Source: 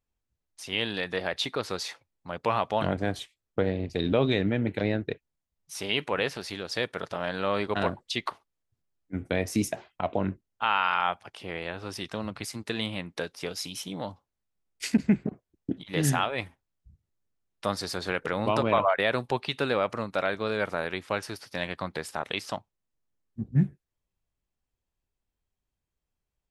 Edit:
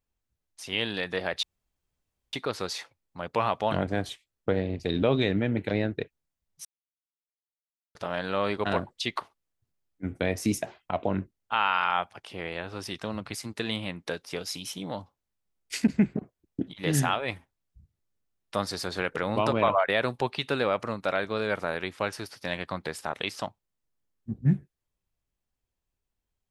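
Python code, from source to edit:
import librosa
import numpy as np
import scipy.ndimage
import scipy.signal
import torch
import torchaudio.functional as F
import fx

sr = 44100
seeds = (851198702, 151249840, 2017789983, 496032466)

y = fx.edit(x, sr, fx.insert_room_tone(at_s=1.43, length_s=0.9),
    fx.silence(start_s=5.75, length_s=1.3), tone=tone)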